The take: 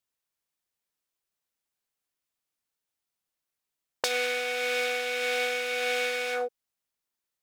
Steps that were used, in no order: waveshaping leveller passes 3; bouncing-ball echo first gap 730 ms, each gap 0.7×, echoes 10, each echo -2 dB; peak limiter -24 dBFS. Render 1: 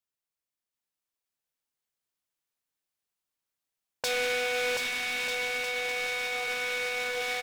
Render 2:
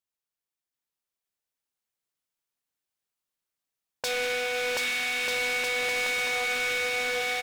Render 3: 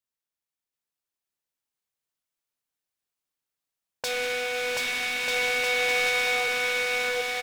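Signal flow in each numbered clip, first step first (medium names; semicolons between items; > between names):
waveshaping leveller > bouncing-ball echo > peak limiter; bouncing-ball echo > waveshaping leveller > peak limiter; waveshaping leveller > peak limiter > bouncing-ball echo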